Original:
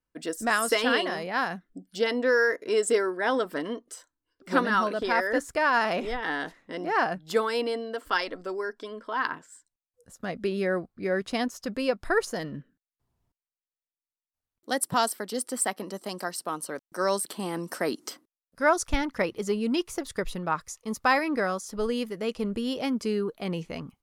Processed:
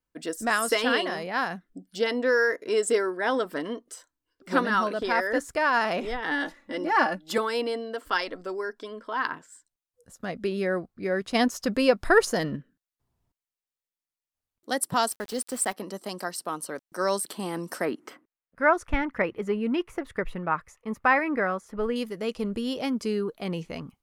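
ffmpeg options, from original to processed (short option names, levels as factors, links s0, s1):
-filter_complex "[0:a]asettb=1/sr,asplit=3[s0][s1][s2];[s0]atrim=end=6.314[s3];[s1]atrim=start=6.31:end=7.38,asetpts=PTS-STARTPTS,afade=t=in:d=0.004:c=qsin,afade=t=out:st=1.066:d=0.004:c=qsin,aecho=1:1:3.5:0.99,atrim=end_sample=47187[s4];[s2]atrim=start=7.376[s5];[s3][s4]acrossfade=d=0.004:c1=hsin:c2=qsin[s6];[s6][s5]acrossfade=d=0.004:c1=qsin:c2=hsin,asplit=3[s7][s8][s9];[s7]afade=t=out:st=11.34:d=0.02[s10];[s8]acontrast=51,afade=t=in:st=11.34:d=0.02,afade=t=out:st=12.55:d=0.02[s11];[s9]afade=t=in:st=12.55:d=0.02[s12];[s10][s11][s12]amix=inputs=3:normalize=0,asettb=1/sr,asplit=3[s13][s14][s15];[s13]atrim=end=15.114[s16];[s14]atrim=start=15.11:end=15.73,asetpts=PTS-STARTPTS,afade=t=in:d=0.004:c=qsin,afade=t=out:st=0.616:d=0.004:c=qsin,aeval=exprs='val(0)*gte(abs(val(0)),0.01)':c=same[s17];[s15]atrim=start=15.726[s18];[s16][s17]acrossfade=d=0.004:c1=hsin:c2=qsin[s19];[s19][s18]acrossfade=d=0.004:c1=qsin:c2=hsin,asettb=1/sr,asplit=3[s20][s21][s22];[s20]atrim=end=17.854[s23];[s21]atrim=start=17.85:end=21.96,asetpts=PTS-STARTPTS,afade=t=in:d=0.004:c=qsin,afade=t=out:st=4.106:d=0.004:c=qsin,highshelf=f=3200:t=q:w=1.5:g=-13[s24];[s22]atrim=start=21.956[s25];[s23][s24]acrossfade=d=0.004:c1=hsin:c2=qsin[s26];[s26][s25]acrossfade=d=0.004:c1=qsin:c2=hsin"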